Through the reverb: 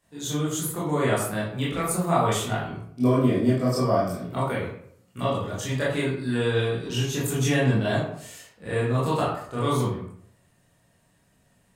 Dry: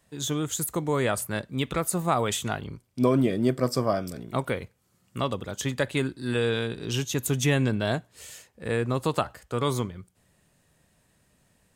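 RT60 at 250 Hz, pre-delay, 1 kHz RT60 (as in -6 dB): 0.70 s, 19 ms, 0.60 s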